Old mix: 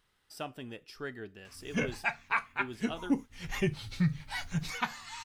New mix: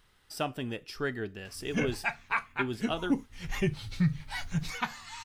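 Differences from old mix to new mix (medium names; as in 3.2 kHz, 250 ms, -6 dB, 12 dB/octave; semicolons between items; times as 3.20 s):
speech +7.0 dB; master: add bass shelf 110 Hz +5.5 dB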